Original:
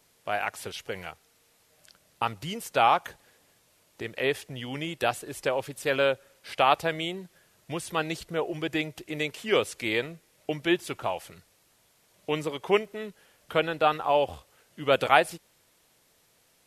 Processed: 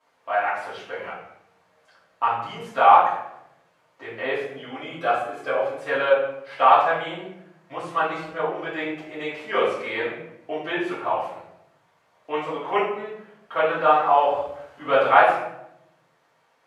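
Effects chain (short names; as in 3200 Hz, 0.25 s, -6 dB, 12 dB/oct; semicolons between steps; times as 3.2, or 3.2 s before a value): 13.68–15.03 G.711 law mismatch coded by mu; band-pass 1000 Hz, Q 1.3; 4.35–5.74 notch comb 910 Hz; reverb RT60 0.80 s, pre-delay 3 ms, DRR -12 dB; gain -3 dB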